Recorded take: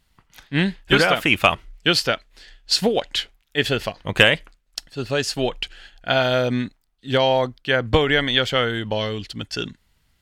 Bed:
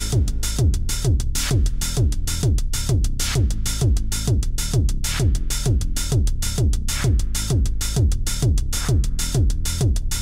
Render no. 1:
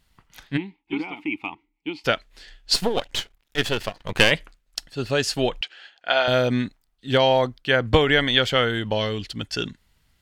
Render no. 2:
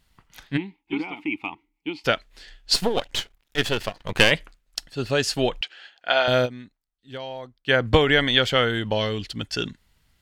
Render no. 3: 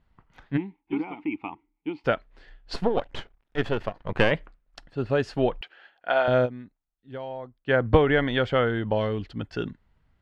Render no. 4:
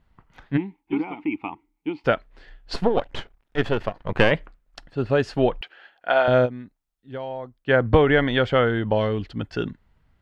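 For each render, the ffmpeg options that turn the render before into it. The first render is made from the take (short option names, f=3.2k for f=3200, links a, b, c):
-filter_complex "[0:a]asplit=3[a][b][c];[a]afade=t=out:st=0.56:d=0.02[d];[b]asplit=3[e][f][g];[e]bandpass=f=300:t=q:w=8,volume=0dB[h];[f]bandpass=f=870:t=q:w=8,volume=-6dB[i];[g]bandpass=f=2.24k:t=q:w=8,volume=-9dB[j];[h][i][j]amix=inputs=3:normalize=0,afade=t=in:st=0.56:d=0.02,afade=t=out:st=2.04:d=0.02[k];[c]afade=t=in:st=2.04:d=0.02[l];[d][k][l]amix=inputs=3:normalize=0,asplit=3[m][n][o];[m]afade=t=out:st=2.73:d=0.02[p];[n]aeval=exprs='if(lt(val(0),0),0.251*val(0),val(0))':c=same,afade=t=in:st=2.73:d=0.02,afade=t=out:st=4.3:d=0.02[q];[o]afade=t=in:st=4.3:d=0.02[r];[p][q][r]amix=inputs=3:normalize=0,asettb=1/sr,asplit=3[s][t][u];[s]atrim=end=5.614[v];[t]atrim=start=5.61:end=6.28,asetpts=PTS-STARTPTS,afade=t=in:d=0.004:c=qsin,afade=t=out:st=0.666:d=0.004:c=qsin,highpass=520,lowpass=5k[w];[u]atrim=start=6.276[x];[v][w]acrossfade=d=0.004:c1=hsin:c2=qsin[y];[y][x]acrossfade=d=0.004:c1=qsin:c2=hsin"
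-filter_complex "[0:a]asplit=3[a][b][c];[a]atrim=end=6.61,asetpts=PTS-STARTPTS,afade=t=out:st=6.45:d=0.16:c=exp:silence=0.149624[d];[b]atrim=start=6.61:end=7.53,asetpts=PTS-STARTPTS,volume=-16.5dB[e];[c]atrim=start=7.53,asetpts=PTS-STARTPTS,afade=t=in:d=0.16:c=exp:silence=0.149624[f];[d][e][f]concat=n=3:v=0:a=1"
-af "lowpass=1.3k,aemphasis=mode=production:type=50fm"
-af "volume=3.5dB,alimiter=limit=-3dB:level=0:latency=1"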